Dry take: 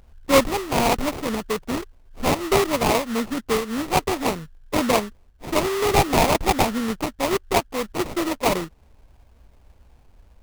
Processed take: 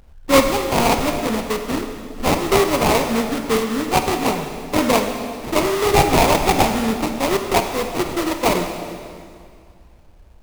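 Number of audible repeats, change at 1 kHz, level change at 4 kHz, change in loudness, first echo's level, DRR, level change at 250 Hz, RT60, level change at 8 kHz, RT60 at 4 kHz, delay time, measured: no echo, +4.0 dB, +3.5 dB, +3.5 dB, no echo, 5.0 dB, +4.0 dB, 2.3 s, +3.5 dB, 2.0 s, no echo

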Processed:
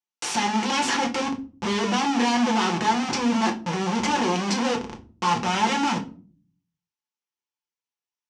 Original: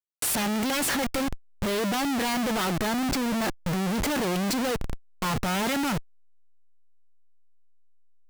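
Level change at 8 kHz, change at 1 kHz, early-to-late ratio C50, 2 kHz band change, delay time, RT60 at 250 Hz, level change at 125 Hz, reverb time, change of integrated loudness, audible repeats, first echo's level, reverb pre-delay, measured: 0.0 dB, +7.5 dB, 13.5 dB, +3.0 dB, no echo, 0.70 s, -0.5 dB, 0.40 s, +3.0 dB, no echo, no echo, 3 ms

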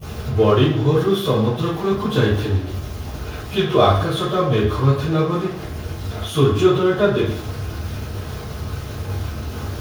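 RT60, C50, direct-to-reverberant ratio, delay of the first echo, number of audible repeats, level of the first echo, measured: 0.60 s, 1.0 dB, -23.0 dB, no echo, no echo, no echo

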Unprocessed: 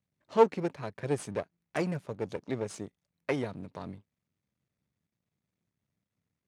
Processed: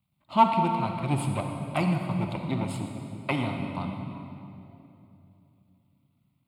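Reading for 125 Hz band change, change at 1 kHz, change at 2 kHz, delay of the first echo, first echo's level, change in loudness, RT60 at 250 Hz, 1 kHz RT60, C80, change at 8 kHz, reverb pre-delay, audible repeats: +10.5 dB, +10.0 dB, +5.0 dB, no echo, no echo, +4.5 dB, 3.6 s, 2.7 s, 5.0 dB, +2.5 dB, 37 ms, no echo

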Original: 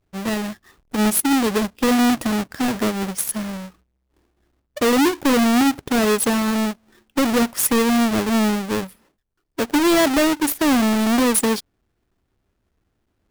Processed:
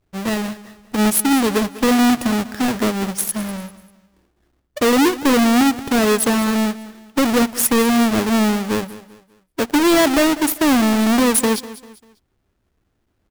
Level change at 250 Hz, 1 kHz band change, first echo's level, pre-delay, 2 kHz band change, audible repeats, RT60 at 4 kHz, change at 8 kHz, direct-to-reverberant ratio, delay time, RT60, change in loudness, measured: +2.0 dB, +2.0 dB, -17.0 dB, no reverb, +2.0 dB, 3, no reverb, +2.0 dB, no reverb, 197 ms, no reverb, +2.0 dB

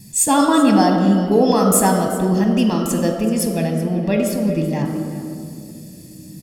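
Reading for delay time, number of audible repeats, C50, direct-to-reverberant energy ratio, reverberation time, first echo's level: 380 ms, 1, 5.0 dB, 3.5 dB, 2.5 s, -16.5 dB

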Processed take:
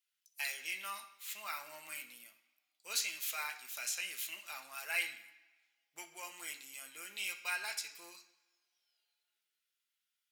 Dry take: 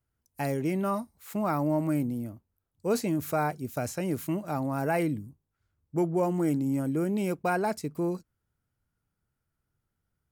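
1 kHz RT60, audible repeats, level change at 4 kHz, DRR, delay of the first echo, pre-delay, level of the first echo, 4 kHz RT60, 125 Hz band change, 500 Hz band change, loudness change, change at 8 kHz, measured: 1.1 s, no echo, +7.0 dB, 2.0 dB, no echo, 3 ms, no echo, 2.6 s, under -40 dB, -27.5 dB, -10.0 dB, +3.0 dB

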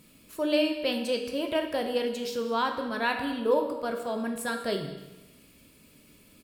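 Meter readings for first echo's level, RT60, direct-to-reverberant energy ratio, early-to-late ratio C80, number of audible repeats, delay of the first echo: -17.5 dB, 1.1 s, 3.5 dB, 8.5 dB, 1, 197 ms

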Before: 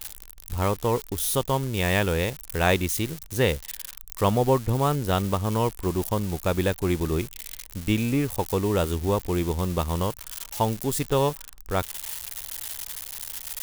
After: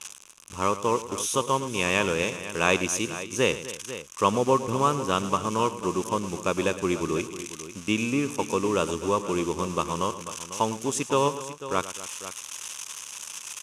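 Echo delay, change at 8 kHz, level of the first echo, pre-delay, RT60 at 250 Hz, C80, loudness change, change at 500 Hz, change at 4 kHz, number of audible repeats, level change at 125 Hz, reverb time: 109 ms, +2.5 dB, -14.5 dB, no reverb, no reverb, no reverb, -1.0 dB, -0.5 dB, +1.0 dB, 3, -8.5 dB, no reverb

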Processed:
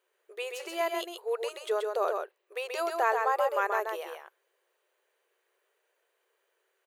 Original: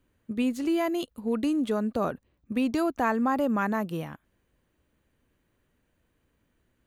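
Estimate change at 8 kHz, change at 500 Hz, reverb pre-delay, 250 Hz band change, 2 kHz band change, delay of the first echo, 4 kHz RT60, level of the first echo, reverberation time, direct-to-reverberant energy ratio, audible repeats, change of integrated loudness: no reading, +0.5 dB, no reverb, -22.0 dB, +1.5 dB, 131 ms, no reverb, -4.5 dB, no reverb, no reverb, 1, -3.0 dB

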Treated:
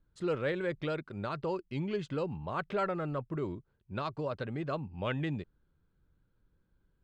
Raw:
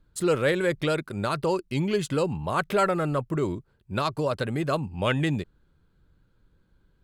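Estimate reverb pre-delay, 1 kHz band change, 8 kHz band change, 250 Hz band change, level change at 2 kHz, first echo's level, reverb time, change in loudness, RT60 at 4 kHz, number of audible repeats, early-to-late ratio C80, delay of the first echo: no reverb, -9.5 dB, under -20 dB, -8.5 dB, -10.0 dB, no echo, no reverb, -9.0 dB, no reverb, no echo, no reverb, no echo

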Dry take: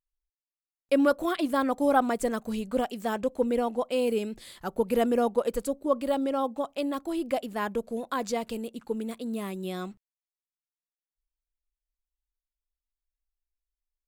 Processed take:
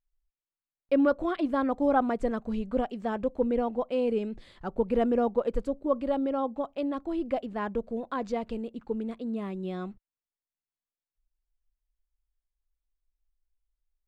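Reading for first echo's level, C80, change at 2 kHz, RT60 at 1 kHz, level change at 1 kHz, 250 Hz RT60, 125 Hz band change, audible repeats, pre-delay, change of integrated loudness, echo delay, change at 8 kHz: no echo, no reverb, -4.0 dB, no reverb, -2.0 dB, no reverb, no reading, no echo, no reverb, -1.0 dB, no echo, under -15 dB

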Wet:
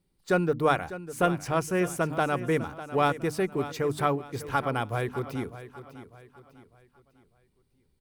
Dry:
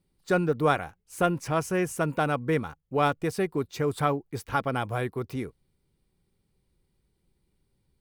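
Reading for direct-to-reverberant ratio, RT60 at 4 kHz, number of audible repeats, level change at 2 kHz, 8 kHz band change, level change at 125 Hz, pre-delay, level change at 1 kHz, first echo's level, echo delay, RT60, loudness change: no reverb, no reverb, 3, 0.0 dB, 0.0 dB, -1.0 dB, no reverb, 0.0 dB, -14.0 dB, 600 ms, no reverb, 0.0 dB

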